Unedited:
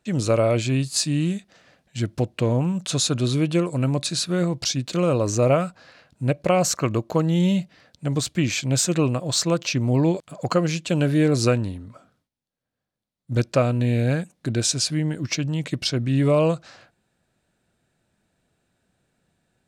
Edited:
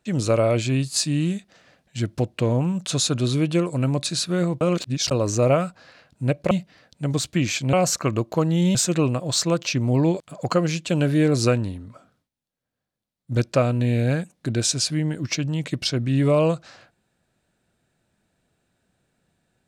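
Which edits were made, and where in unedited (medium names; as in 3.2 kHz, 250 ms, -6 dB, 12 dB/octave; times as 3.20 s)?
4.61–5.11 s: reverse
6.51–7.53 s: move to 8.75 s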